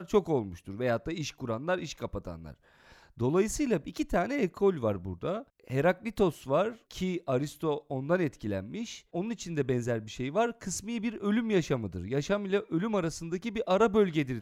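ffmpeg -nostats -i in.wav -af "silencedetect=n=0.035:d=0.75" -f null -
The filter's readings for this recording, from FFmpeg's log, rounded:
silence_start: 2.30
silence_end: 3.21 | silence_duration: 0.90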